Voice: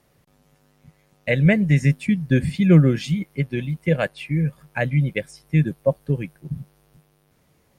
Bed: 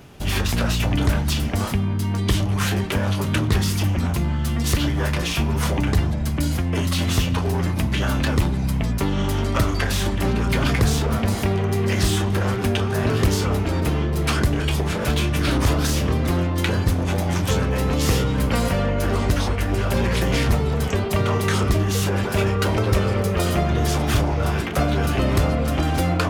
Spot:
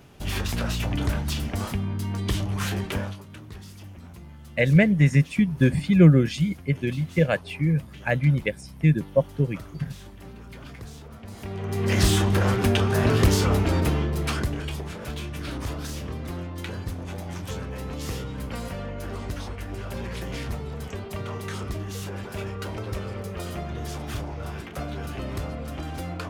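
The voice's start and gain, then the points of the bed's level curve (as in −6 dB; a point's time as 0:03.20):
3.30 s, −1.0 dB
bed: 0:03.00 −6 dB
0:03.24 −22 dB
0:11.19 −22 dB
0:11.97 0 dB
0:13.73 0 dB
0:14.96 −12.5 dB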